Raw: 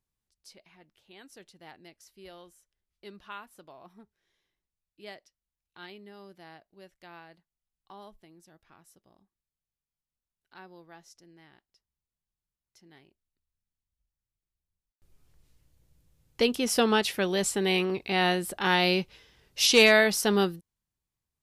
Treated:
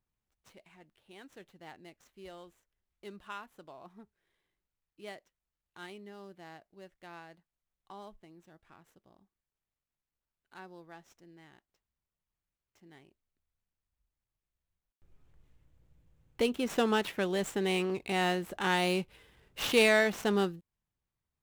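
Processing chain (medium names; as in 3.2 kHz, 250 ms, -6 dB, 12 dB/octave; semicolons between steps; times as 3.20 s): median filter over 9 samples; in parallel at -0.5 dB: compression, threshold -37 dBFS, peak gain reduction 20 dB; on the sum: trim -5.5 dB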